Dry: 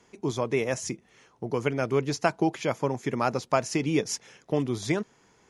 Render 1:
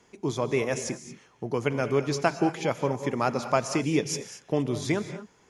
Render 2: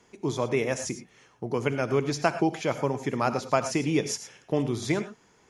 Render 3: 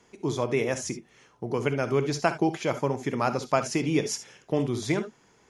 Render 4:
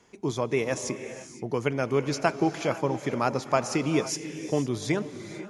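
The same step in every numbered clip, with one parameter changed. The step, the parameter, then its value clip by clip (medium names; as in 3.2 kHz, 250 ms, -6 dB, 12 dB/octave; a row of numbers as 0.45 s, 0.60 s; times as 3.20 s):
gated-style reverb, gate: 250 ms, 130 ms, 90 ms, 530 ms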